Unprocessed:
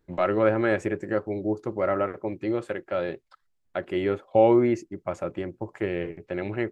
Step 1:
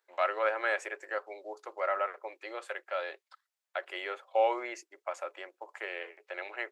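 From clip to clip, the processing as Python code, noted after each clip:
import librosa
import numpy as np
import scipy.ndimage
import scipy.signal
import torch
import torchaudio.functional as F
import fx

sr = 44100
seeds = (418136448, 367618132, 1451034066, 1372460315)

y = scipy.signal.sosfilt(scipy.signal.bessel(6, 880.0, 'highpass', norm='mag', fs=sr, output='sos'), x)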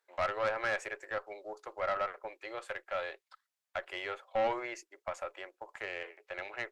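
y = fx.tube_stage(x, sr, drive_db=24.0, bias=0.35)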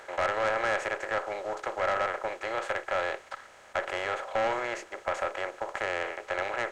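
y = fx.bin_compress(x, sr, power=0.4)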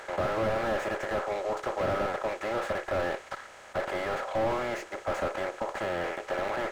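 y = fx.slew_limit(x, sr, full_power_hz=23.0)
y = F.gain(torch.from_numpy(y), 4.0).numpy()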